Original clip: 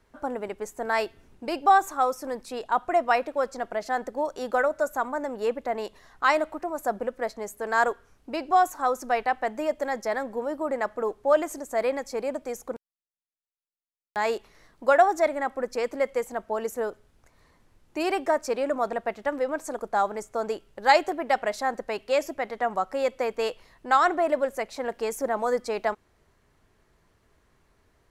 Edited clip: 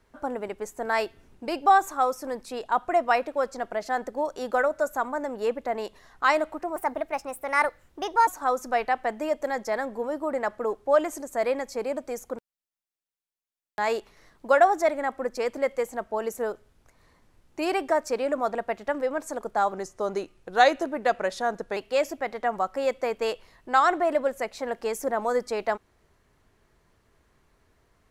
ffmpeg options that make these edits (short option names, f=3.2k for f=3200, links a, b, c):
-filter_complex "[0:a]asplit=5[a][b][c][d][e];[a]atrim=end=6.764[f];[b]atrim=start=6.76:end=8.65,asetpts=PTS-STARTPTS,asetrate=55125,aresample=44100,atrim=end_sample=66679,asetpts=PTS-STARTPTS[g];[c]atrim=start=8.646:end=20.104[h];[d]atrim=start=20.1:end=21.94,asetpts=PTS-STARTPTS,asetrate=39690,aresample=44100[i];[e]atrim=start=21.936[j];[f][g]acrossfade=d=0.004:c1=hsin:c2=hsin[k];[k][h]acrossfade=d=0.004:c1=hsin:c2=hsin[l];[l][i]acrossfade=d=0.004:c1=hsin:c2=hsin[m];[m][j]acrossfade=d=0.004:c1=hsin:c2=hsin"